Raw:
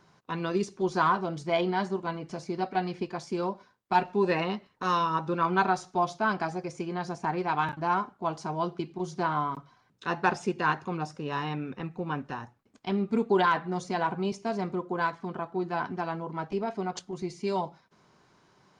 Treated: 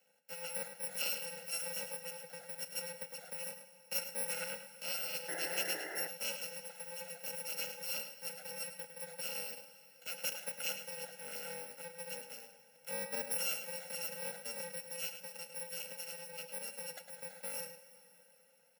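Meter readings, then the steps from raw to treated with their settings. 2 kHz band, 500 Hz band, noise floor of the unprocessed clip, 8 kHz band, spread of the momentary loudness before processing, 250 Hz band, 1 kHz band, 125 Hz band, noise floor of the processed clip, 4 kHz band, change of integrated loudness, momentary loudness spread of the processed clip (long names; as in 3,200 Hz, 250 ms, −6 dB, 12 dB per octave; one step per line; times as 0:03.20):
−10.5 dB, −15.5 dB, −65 dBFS, +9.5 dB, 9 LU, −26.5 dB, −24.0 dB, −25.0 dB, −65 dBFS, −0.5 dB, −9.5 dB, 10 LU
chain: samples in bit-reversed order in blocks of 128 samples
high-pass filter 190 Hz 24 dB per octave
three-way crossover with the lows and the highs turned down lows −21 dB, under 380 Hz, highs −16 dB, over 2,100 Hz
slap from a distant wall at 18 metres, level −9 dB
dense smooth reverb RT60 4.3 s, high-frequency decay 0.85×, DRR 12.5 dB
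sound drawn into the spectrogram noise, 0:05.28–0:06.08, 290–2,100 Hz −44 dBFS
Butterworth band-reject 1,100 Hz, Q 1.7
level +1.5 dB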